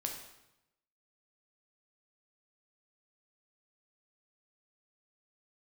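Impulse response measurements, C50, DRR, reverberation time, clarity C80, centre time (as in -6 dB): 5.0 dB, 1.5 dB, 0.90 s, 8.0 dB, 31 ms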